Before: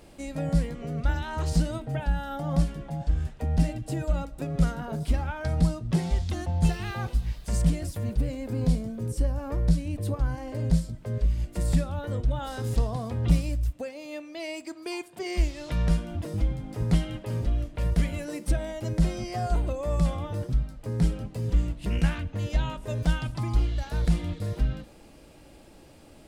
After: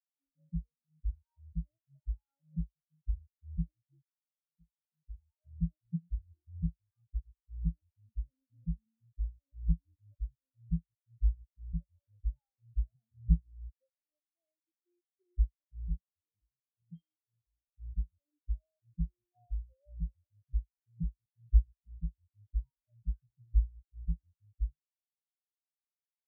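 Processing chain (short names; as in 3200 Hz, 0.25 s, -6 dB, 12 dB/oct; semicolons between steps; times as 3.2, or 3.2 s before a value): 4.03–5.59 fade in; 15.97–17.67 weighting filter D; spectral expander 4:1; gain -3.5 dB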